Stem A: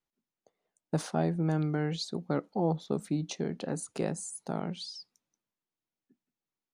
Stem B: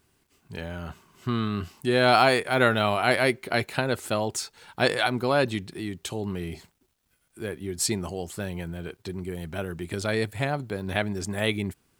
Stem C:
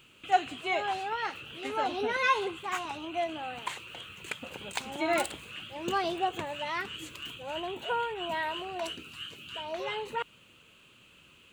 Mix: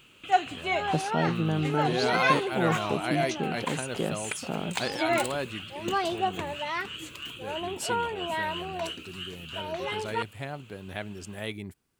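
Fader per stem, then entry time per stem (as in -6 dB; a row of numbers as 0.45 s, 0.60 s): +1.5 dB, -9.5 dB, +2.0 dB; 0.00 s, 0.00 s, 0.00 s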